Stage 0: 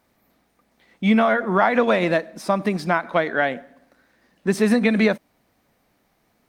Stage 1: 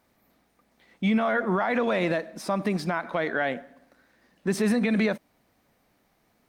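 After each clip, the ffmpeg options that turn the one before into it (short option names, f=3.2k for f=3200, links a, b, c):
-af "alimiter=limit=-13.5dB:level=0:latency=1:release=42,volume=-2dB"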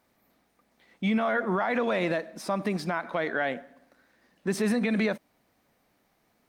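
-af "lowshelf=f=140:g=-4,volume=-1.5dB"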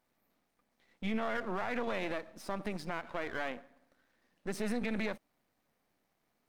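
-af "aeval=exprs='if(lt(val(0),0),0.251*val(0),val(0))':c=same,volume=-6dB"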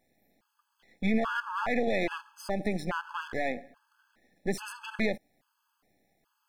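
-af "afftfilt=real='re*gt(sin(2*PI*1.2*pts/sr)*(1-2*mod(floor(b*sr/1024/860),2)),0)':imag='im*gt(sin(2*PI*1.2*pts/sr)*(1-2*mod(floor(b*sr/1024/860),2)),0)':win_size=1024:overlap=0.75,volume=8dB"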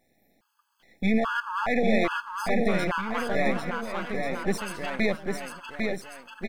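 -af "aecho=1:1:800|1440|1952|2362|2689:0.631|0.398|0.251|0.158|0.1,volume=3.5dB"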